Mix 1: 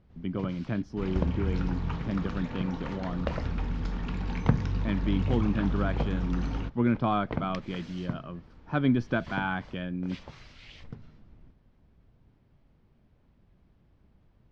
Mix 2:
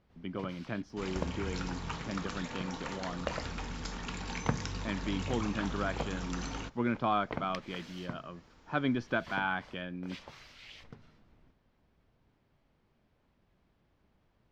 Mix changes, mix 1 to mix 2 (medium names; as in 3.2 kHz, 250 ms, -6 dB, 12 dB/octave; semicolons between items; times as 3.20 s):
first sound: remove low-pass 7.1 kHz 12 dB/octave; second sound: remove distance through air 200 m; master: add bass shelf 300 Hz -11.5 dB